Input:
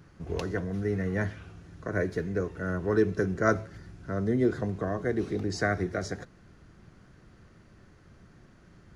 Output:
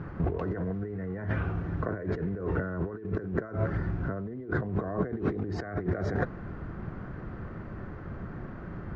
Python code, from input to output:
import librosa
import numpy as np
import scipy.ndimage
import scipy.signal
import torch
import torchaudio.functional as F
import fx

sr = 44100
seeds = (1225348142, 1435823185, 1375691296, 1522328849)

p1 = fx.quant_float(x, sr, bits=2)
p2 = x + (p1 * 10.0 ** (-5.0 / 20.0))
p3 = fx.over_compress(p2, sr, threshold_db=-36.0, ratio=-1.0)
p4 = scipy.signal.sosfilt(scipy.signal.cheby1(2, 1.0, 1300.0, 'lowpass', fs=sr, output='sos'), p3)
y = p4 * 10.0 ** (4.5 / 20.0)